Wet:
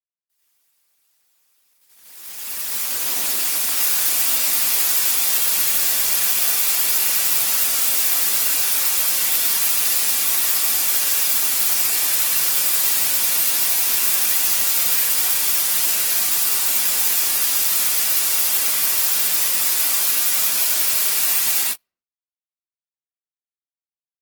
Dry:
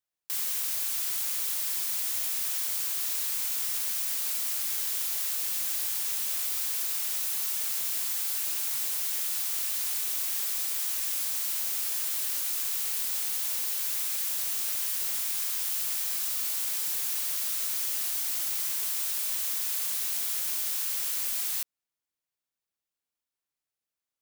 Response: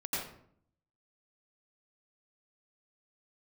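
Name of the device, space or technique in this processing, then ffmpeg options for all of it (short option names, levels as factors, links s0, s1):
speakerphone in a meeting room: -filter_complex "[0:a]asettb=1/sr,asplit=3[s0][s1][s2];[s0]atrim=end=2.844[s3];[s1]atrim=start=2.84:end=3.27,asetpts=PTS-STARTPTS,afade=t=in:d=0.004:c=qsin,afade=t=out:st=0.426:d=0.004:c=qsin,equalizer=f=370:w=0.8:g=5.5[s4];[s2]atrim=start=3.266[s5];[s3][s4]acrossfade=d=0.004:c1=hsin:c2=qsin[s6];[s6][s5]acrossfade=d=0.004:c1=qsin:c2=hsin[s7];[1:a]atrim=start_sample=2205[s8];[s7][s8]afir=irnorm=-1:irlink=0,dynaudnorm=f=930:g=5:m=3.76,agate=range=0.0178:threshold=0.112:ratio=16:detection=peak" -ar 48000 -c:a libopus -b:a 16k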